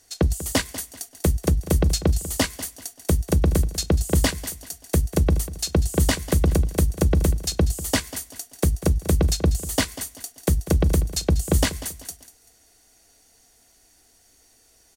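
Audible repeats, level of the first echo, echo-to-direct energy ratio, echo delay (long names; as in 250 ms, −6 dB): 3, −15.0 dB, −14.5 dB, 193 ms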